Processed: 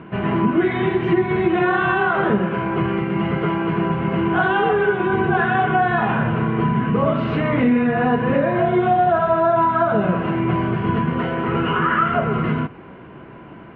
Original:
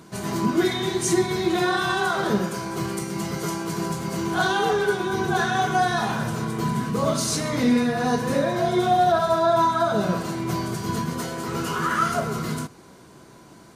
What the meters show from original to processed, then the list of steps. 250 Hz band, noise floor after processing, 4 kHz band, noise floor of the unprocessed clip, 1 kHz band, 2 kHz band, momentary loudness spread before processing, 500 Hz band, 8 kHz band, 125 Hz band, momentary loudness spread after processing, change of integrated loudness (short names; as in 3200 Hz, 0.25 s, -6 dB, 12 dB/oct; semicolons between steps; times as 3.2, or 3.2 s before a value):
+5.5 dB, -40 dBFS, -5.0 dB, -48 dBFS, +4.0 dB, +5.5 dB, 9 LU, +4.5 dB, under -40 dB, +6.5 dB, 5 LU, +4.5 dB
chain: Chebyshev low-pass 2900 Hz, order 5; compressor 2.5:1, threshold -25 dBFS, peak gain reduction 6.5 dB; gain +9 dB